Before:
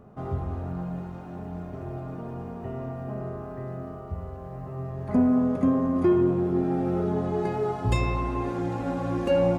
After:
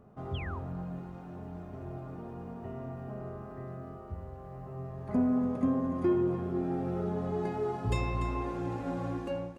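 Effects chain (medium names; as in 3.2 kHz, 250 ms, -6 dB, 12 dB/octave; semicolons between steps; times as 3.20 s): fade out at the end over 0.54 s; delay 292 ms -10.5 dB; painted sound fall, 0.34–0.59 s, 870–3500 Hz -38 dBFS; trim -6.5 dB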